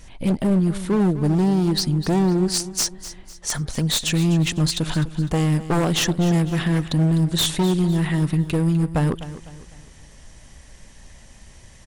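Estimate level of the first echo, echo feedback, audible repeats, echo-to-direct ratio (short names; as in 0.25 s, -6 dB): -14.5 dB, 39%, 3, -14.0 dB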